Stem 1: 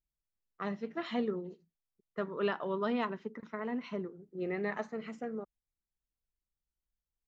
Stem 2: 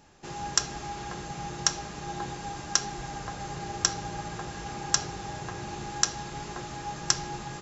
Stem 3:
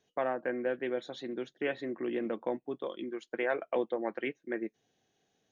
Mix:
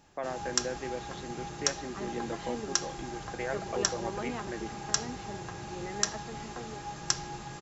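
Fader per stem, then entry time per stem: -5.5, -4.0, -4.0 dB; 1.35, 0.00, 0.00 s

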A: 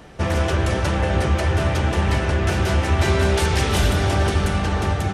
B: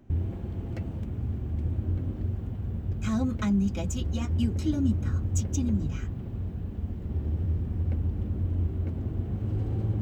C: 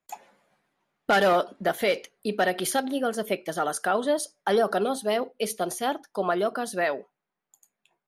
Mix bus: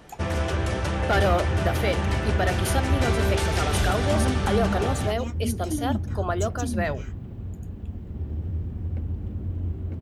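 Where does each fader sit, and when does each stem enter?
-5.5, -1.5, -2.5 dB; 0.00, 1.05, 0.00 s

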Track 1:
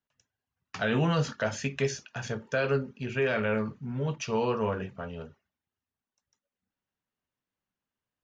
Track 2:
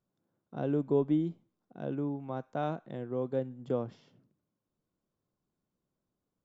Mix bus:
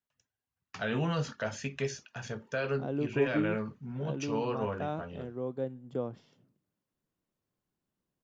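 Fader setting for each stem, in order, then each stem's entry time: -5.0, -2.5 dB; 0.00, 2.25 s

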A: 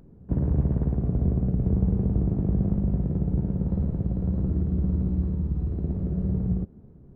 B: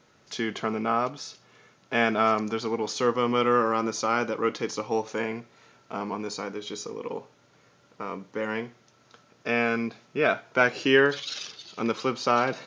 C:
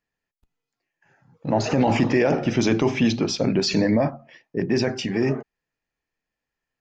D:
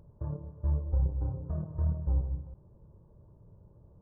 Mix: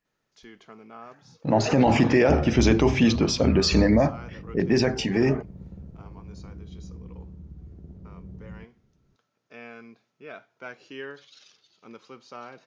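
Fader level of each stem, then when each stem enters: -16.5, -18.5, +0.5, +1.5 dB; 2.00, 0.05, 0.00, 1.65 s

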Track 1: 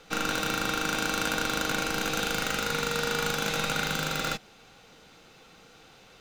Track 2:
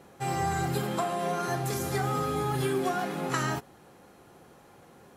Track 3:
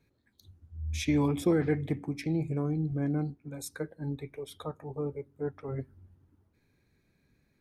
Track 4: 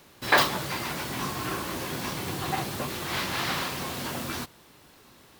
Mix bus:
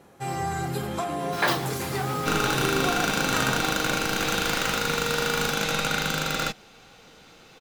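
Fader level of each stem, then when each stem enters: +3.0, 0.0, -11.0, -4.0 dB; 2.15, 0.00, 0.00, 1.10 s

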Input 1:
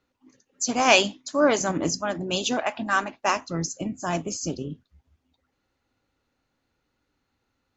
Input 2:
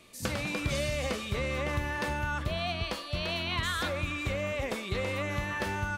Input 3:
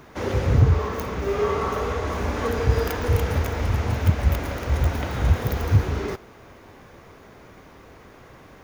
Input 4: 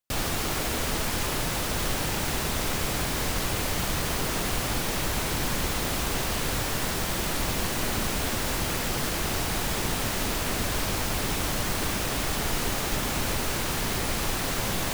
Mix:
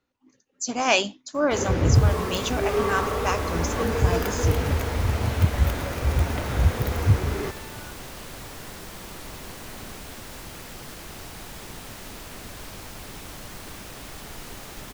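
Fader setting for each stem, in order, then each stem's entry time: -3.0, -11.5, -1.0, -11.5 dB; 0.00, 1.95, 1.35, 1.85 s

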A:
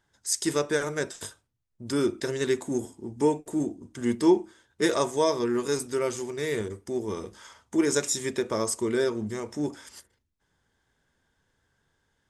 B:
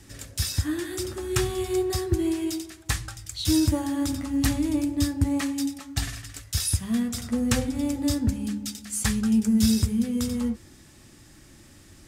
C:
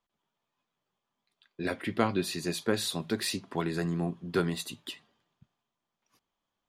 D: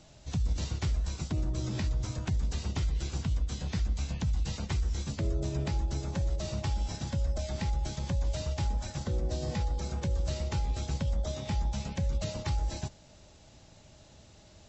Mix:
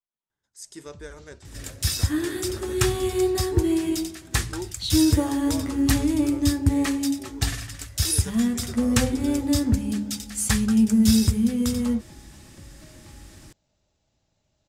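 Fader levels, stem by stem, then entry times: -14.5, +3.0, -18.0, -17.0 dB; 0.30, 1.45, 0.00, 0.60 s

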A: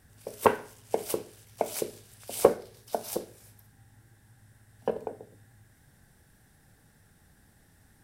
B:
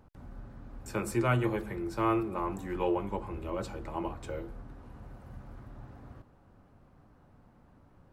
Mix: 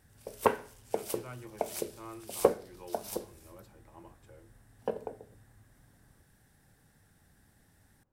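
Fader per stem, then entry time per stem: -4.0, -18.0 dB; 0.00, 0.00 s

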